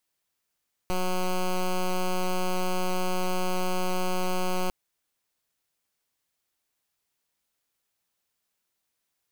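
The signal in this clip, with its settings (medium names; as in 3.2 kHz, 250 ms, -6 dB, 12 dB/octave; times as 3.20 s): pulse 183 Hz, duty 10% -25.5 dBFS 3.80 s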